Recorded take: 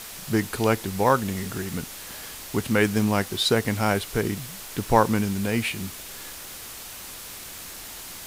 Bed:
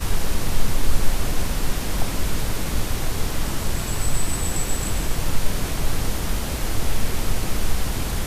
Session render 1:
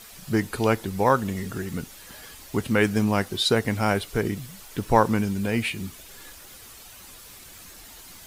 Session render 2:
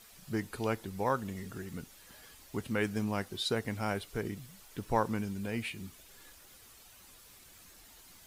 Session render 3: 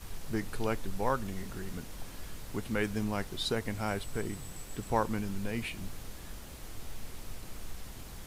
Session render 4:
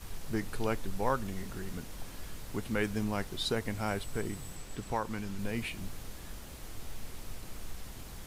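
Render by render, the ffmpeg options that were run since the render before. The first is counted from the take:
-af "afftdn=nr=9:nf=-40"
-af "volume=-11dB"
-filter_complex "[1:a]volume=-21dB[a];[0:a][a]amix=inputs=2:normalize=0"
-filter_complex "[0:a]asettb=1/sr,asplit=3[a][b][c];[a]atrim=end=4.554[d];[b]atrim=start=4.55:end=5.39,asetpts=PTS-STARTPTS,afade=t=in:d=0.004:c=qsin,afade=t=out:st=0.836:d=0.004:c=qsin,acrossover=split=800|7900[e][f][g];[e]acompressor=threshold=-34dB:ratio=4[h];[f]acompressor=threshold=-32dB:ratio=4[i];[g]acompressor=threshold=-60dB:ratio=4[j];[h][i][j]amix=inputs=3:normalize=0[k];[c]atrim=start=5.386[l];[d][k]acrossfade=d=0.004:c1=hsin:c2=qsin[m];[m][l]acrossfade=d=0.004:c1=qsin:c2=hsin"

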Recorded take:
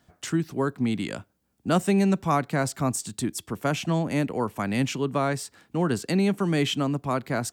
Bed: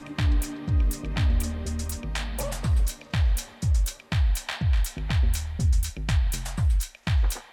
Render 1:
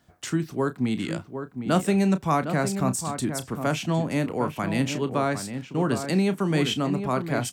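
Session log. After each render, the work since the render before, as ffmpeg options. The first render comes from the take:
-filter_complex "[0:a]asplit=2[a][b];[b]adelay=32,volume=-12dB[c];[a][c]amix=inputs=2:normalize=0,asplit=2[d][e];[e]adelay=758,volume=-8dB,highshelf=f=4k:g=-17.1[f];[d][f]amix=inputs=2:normalize=0"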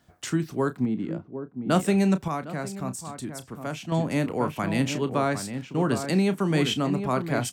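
-filter_complex "[0:a]asettb=1/sr,asplit=3[a][b][c];[a]atrim=end=0.854[d];[b]atrim=start=0.85:end=1.7,asetpts=PTS-STARTPTS,afade=t=in:d=0.004:c=qsin,afade=t=out:st=0.846:d=0.004:c=qsin,bandpass=f=280:t=q:w=0.63[e];[c]atrim=start=1.696[f];[d][e]acrossfade=d=0.004:c1=hsin:c2=qsin[g];[g][f]acrossfade=d=0.004:c1=qsin:c2=hsin,asplit=3[h][i][j];[h]atrim=end=2.282[k];[i]atrim=start=2.278:end=3.922,asetpts=PTS-STARTPTS,volume=-7.5dB[l];[j]atrim=start=3.918[m];[k][l]acrossfade=d=0.004:c1=hsin:c2=hsin[n];[n][m]acrossfade=d=0.004:c1=hsin:c2=hsin"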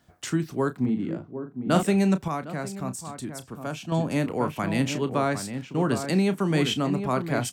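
-filter_complex "[0:a]asettb=1/sr,asplit=3[a][b][c];[a]atrim=end=0.814[d];[b]atrim=start=0.81:end=1.83,asetpts=PTS-STARTPTS,afade=t=in:d=0.004:c=qsin,afade=t=out:st=1.016:d=0.004:c=qsin,asplit=2[e][f];[f]adelay=40,volume=-6.5dB[g];[e][g]amix=inputs=2:normalize=0,atrim=end_sample=44982[h];[c]atrim=start=1.826[i];[d][h]acrossfade=d=0.004:c1=hsin:c2=qsin[j];[j][i]acrossfade=d=0.004:c1=qsin:c2=hsin,asettb=1/sr,asplit=3[k][l][m];[k]atrim=end=3.474[n];[l]atrim=start=3.47:end=4.16,asetpts=PTS-STARTPTS,afade=t=in:d=0.004:c=qsin,afade=t=out:st=0.686:d=0.004:c=qsin,bandreject=f=2k:w=6.8[o];[m]atrim=start=4.156[p];[n][o]acrossfade=d=0.004:c1=hsin:c2=qsin[q];[q][p]acrossfade=d=0.004:c1=qsin:c2=hsin"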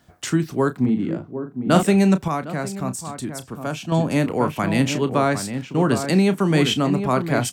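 -af "volume=5.5dB"

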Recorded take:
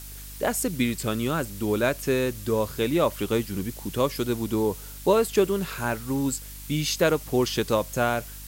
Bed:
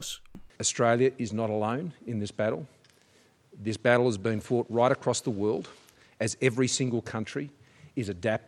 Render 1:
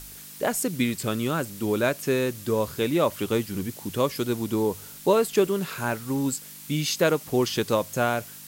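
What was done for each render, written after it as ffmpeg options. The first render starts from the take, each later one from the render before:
-af "bandreject=f=50:t=h:w=4,bandreject=f=100:t=h:w=4"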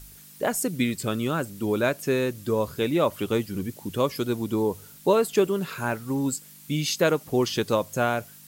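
-af "afftdn=nr=7:nf=-43"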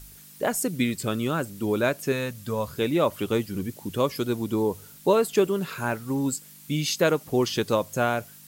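-filter_complex "[0:a]asettb=1/sr,asplit=3[a][b][c];[a]atrim=end=2.124[d];[b]atrim=start=2.12:end=2.73,asetpts=PTS-STARTPTS,afade=t=in:d=0.004:c=qsin,afade=t=out:st=0.606:d=0.004:c=qsin,equalizer=f=350:t=o:w=0.56:g=-14.5[e];[c]atrim=start=2.726[f];[d][e]acrossfade=d=0.004:c1=hsin:c2=qsin[g];[g][f]acrossfade=d=0.004:c1=qsin:c2=hsin"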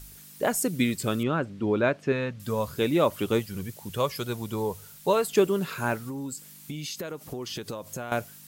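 -filter_complex "[0:a]asettb=1/sr,asplit=3[a][b][c];[a]atrim=end=1.234[d];[b]atrim=start=1.23:end=2.4,asetpts=PTS-STARTPTS,afade=t=in:d=0.004:c=qsin,afade=t=out:st=1.166:d=0.004:c=qsin,lowpass=2.9k[e];[c]atrim=start=2.396[f];[d][e]acrossfade=d=0.004:c1=hsin:c2=qsin[g];[g][f]acrossfade=d=0.004:c1=qsin:c2=hsin,asettb=1/sr,asplit=3[h][i][j];[h]atrim=end=3.394[k];[i]atrim=start=3.39:end=5.28,asetpts=PTS-STARTPTS,afade=t=in:d=0.004:c=qsin,afade=t=out:st=1.886:d=0.004:c=qsin,equalizer=f=290:w=1.6:g=-11[l];[j]atrim=start=5.276[m];[k][l]acrossfade=d=0.004:c1=hsin:c2=qsin[n];[n][m]acrossfade=d=0.004:c1=qsin:c2=hsin,asettb=1/sr,asplit=3[o][p][q];[o]atrim=end=6.024[r];[p]atrim=start=6.02:end=8.12,asetpts=PTS-STARTPTS,afade=t=in:d=0.004:c=qsin,afade=t=out:st=2.096:d=0.004:c=qsin,acompressor=threshold=-31dB:ratio=12:attack=3.2:release=140:knee=1:detection=peak[s];[q]atrim=start=8.116[t];[r][s]acrossfade=d=0.004:c1=hsin:c2=qsin[u];[u][t]acrossfade=d=0.004:c1=qsin:c2=hsin"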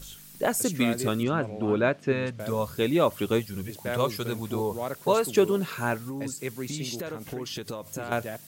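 -filter_complex "[1:a]volume=-9.5dB[a];[0:a][a]amix=inputs=2:normalize=0"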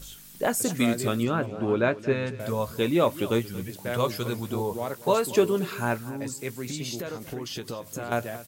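-filter_complex "[0:a]asplit=2[a][b];[b]adelay=17,volume=-13dB[c];[a][c]amix=inputs=2:normalize=0,aecho=1:1:229:0.141"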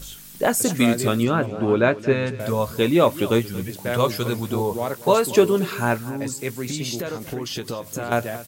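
-af "volume=5.5dB"

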